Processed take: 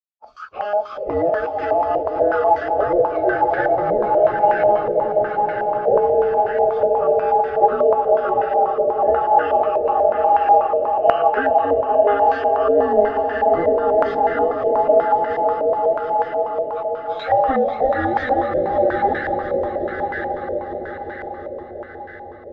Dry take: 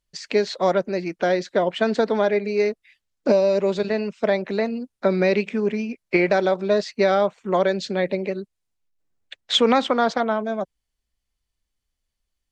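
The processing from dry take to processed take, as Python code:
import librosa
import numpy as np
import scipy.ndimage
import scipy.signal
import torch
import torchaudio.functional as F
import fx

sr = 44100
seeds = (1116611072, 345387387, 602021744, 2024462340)

p1 = fx.band_invert(x, sr, width_hz=1000)
p2 = fx.over_compress(p1, sr, threshold_db=-26.0, ratio=-0.5)
p3 = p1 + F.gain(torch.from_numpy(p2), -2.5).numpy()
p4 = fx.quant_dither(p3, sr, seeds[0], bits=8, dither='none')
p5 = p4 + fx.echo_swell(p4, sr, ms=99, loudest=5, wet_db=-10.0, dry=0)
p6 = fx.stretch_vocoder_free(p5, sr, factor=1.8)
p7 = fx.echo_diffused(p6, sr, ms=524, feedback_pct=65, wet_db=-11)
p8 = fx.filter_held_lowpass(p7, sr, hz=8.2, low_hz=570.0, high_hz=1600.0)
y = F.gain(torch.from_numpy(p8), -3.5).numpy()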